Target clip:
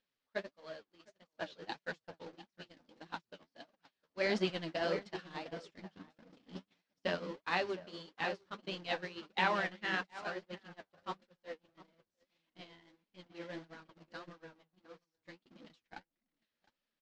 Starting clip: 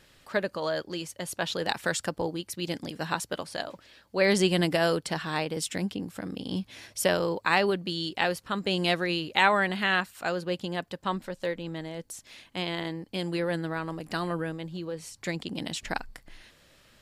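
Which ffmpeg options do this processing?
-filter_complex "[0:a]aeval=exprs='val(0)+0.5*0.0562*sgn(val(0))':c=same,lowpass=f=5.5k:w=0.5412,lowpass=f=5.5k:w=1.3066,lowshelf=f=180:g=-11.5,asplit=2[a][b];[b]adelay=710,lowpass=f=2k:p=1,volume=-5.5dB,asplit=2[c][d];[d]adelay=710,lowpass=f=2k:p=1,volume=0.3,asplit=2[e][f];[f]adelay=710,lowpass=f=2k:p=1,volume=0.3,asplit=2[g][h];[h]adelay=710,lowpass=f=2k:p=1,volume=0.3[i];[a][c][e][g][i]amix=inputs=5:normalize=0,acompressor=mode=upward:threshold=-29dB:ratio=2.5,equalizer=f=230:t=o:w=0.72:g=6,bandreject=f=50:t=h:w=6,bandreject=f=100:t=h:w=6,bandreject=f=150:t=h:w=6,bandreject=f=200:t=h:w=6,bandreject=f=250:t=h:w=6,bandreject=f=300:t=h:w=6,bandreject=f=350:t=h:w=6,acompressor=threshold=-29dB:ratio=1.5,agate=range=-52dB:threshold=-25dB:ratio=16:detection=peak,flanger=delay=3.6:depth=9.4:regen=34:speed=1.6:shape=triangular,volume=-2.5dB"

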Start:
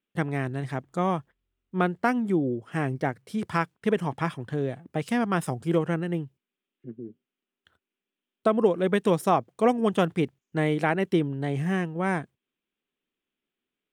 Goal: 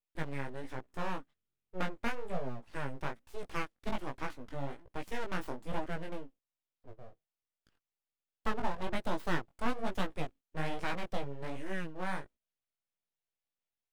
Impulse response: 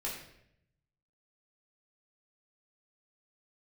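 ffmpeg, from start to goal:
-af "aeval=exprs='abs(val(0))':c=same,flanger=delay=15.5:depth=6.4:speed=1.2,volume=-6dB"

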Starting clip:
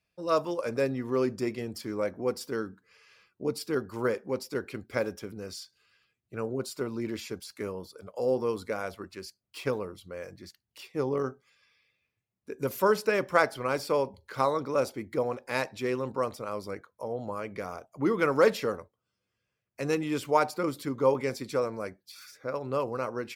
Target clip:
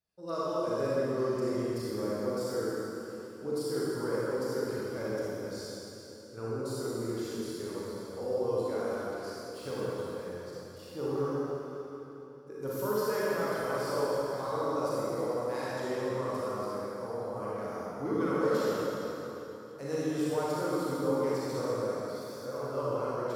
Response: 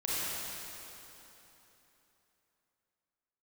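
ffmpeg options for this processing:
-filter_complex "[0:a]equalizer=f=2.4k:w=2.4:g=-12,alimiter=limit=-19.5dB:level=0:latency=1[a];[1:a]atrim=start_sample=2205[b];[a][b]afir=irnorm=-1:irlink=0,volume=-7.5dB"

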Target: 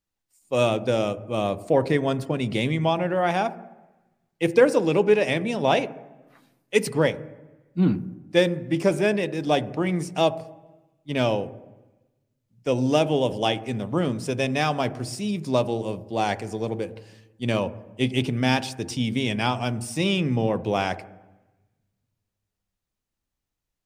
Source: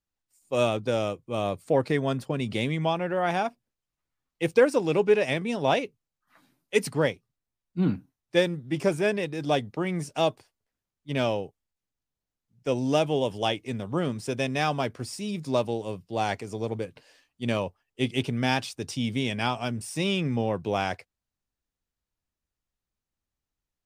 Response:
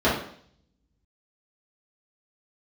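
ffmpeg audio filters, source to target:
-filter_complex "[0:a]asplit=2[a][b];[1:a]atrim=start_sample=2205,asetrate=22932,aresample=44100[c];[b][c]afir=irnorm=-1:irlink=0,volume=-35dB[d];[a][d]amix=inputs=2:normalize=0,volume=2.5dB"

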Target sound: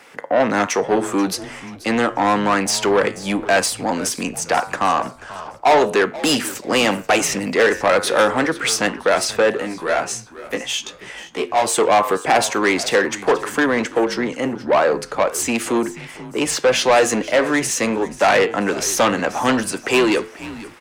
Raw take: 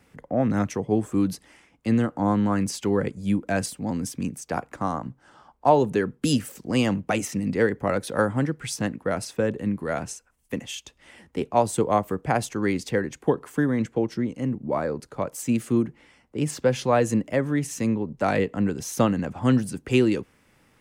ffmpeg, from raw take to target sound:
-filter_complex "[0:a]flanger=delay=9.7:depth=1:regen=-83:speed=0.43:shape=triangular,asplit=2[a][b];[b]highpass=f=720:p=1,volume=30dB,asoftclip=type=tanh:threshold=-4dB[c];[a][c]amix=inputs=2:normalize=0,lowpass=f=3.2k:p=1,volume=-6dB,bass=f=250:g=-11,treble=f=4k:g=3,asplit=4[d][e][f][g];[e]adelay=484,afreqshift=-86,volume=-17dB[h];[f]adelay=968,afreqshift=-172,volume=-25.6dB[i];[g]adelay=1452,afreqshift=-258,volume=-34.3dB[j];[d][h][i][j]amix=inputs=4:normalize=0,asplit=3[k][l][m];[k]afade=t=out:st=9.62:d=0.02[n];[l]flanger=delay=16:depth=2.1:speed=2.8,afade=t=in:st=9.62:d=0.02,afade=t=out:st=11.66:d=0.02[o];[m]afade=t=in:st=11.66:d=0.02[p];[n][o][p]amix=inputs=3:normalize=0"

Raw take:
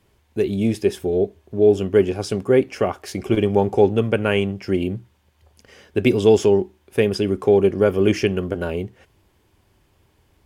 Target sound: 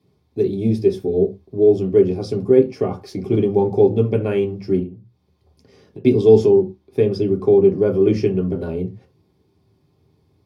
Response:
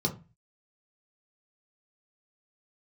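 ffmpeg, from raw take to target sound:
-filter_complex "[0:a]asettb=1/sr,asplit=3[a][b][c];[a]atrim=end=4.794[d];[b]atrim=start=4.79:end=6.05,asetpts=PTS-STARTPTS,afade=t=in:d=0.004:c=qsin,afade=t=out:st=1.256:d=0.004:c=qsin,acompressor=threshold=-37dB:ratio=8[e];[c]atrim=start=6.046[f];[d][e]acrossfade=d=0.004:c1=hsin:c2=qsin[g];[g][f]acrossfade=d=0.004:c1=qsin:c2=hsin,asettb=1/sr,asplit=3[h][i][j];[h]atrim=end=6.614[k];[i]atrim=start=6.61:end=8.56,asetpts=PTS-STARTPTS,afade=t=in:d=0.004:c=qsin,afade=t=out:st=1.946:d=0.004:c=qsin,highshelf=f=6.2k:g=-4.5[l];[j]atrim=start=8.556[m];[k][l]acrossfade=d=0.004:c1=hsin:c2=qsin[n];[n][m]acrossfade=d=0.004:c1=qsin:c2=hsin[o];[1:a]atrim=start_sample=2205,afade=t=out:st=0.17:d=0.01,atrim=end_sample=7938[p];[o][p]afir=irnorm=-1:irlink=0,volume=-13dB"

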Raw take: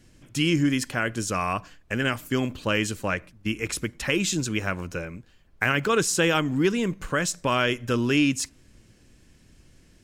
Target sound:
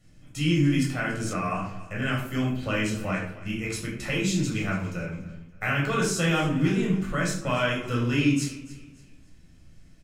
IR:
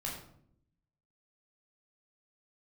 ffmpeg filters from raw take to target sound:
-filter_complex "[0:a]aecho=1:1:285|570|855:0.126|0.0428|0.0146[a];[1:a]atrim=start_sample=2205,asetrate=48510,aresample=44100[b];[a][b]afir=irnorm=-1:irlink=0,asettb=1/sr,asplit=3[c][d][e];[c]atrim=end=1.334[f];[d]atrim=start=1.33:end=2.02,asetpts=PTS-STARTPTS,afade=t=in:d=0.004:c=qsin,afade=t=out:st=0.686:d=0.004:c=qsin,acrossover=split=2600[g][h];[h]acompressor=threshold=-43dB:ratio=4:attack=1:release=60[i];[g][i]amix=inputs=2:normalize=0[j];[e]atrim=start=2.016[k];[f][j]acrossfade=d=0.004:c1=hsin:c2=qsin[l];[l][k]acrossfade=d=0.004:c1=qsin:c2=hsin,volume=-3.5dB"

